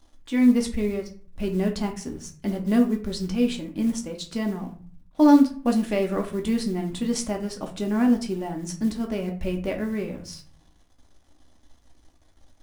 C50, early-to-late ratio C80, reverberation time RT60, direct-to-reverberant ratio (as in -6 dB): 10.5 dB, 16.0 dB, 0.45 s, 2.0 dB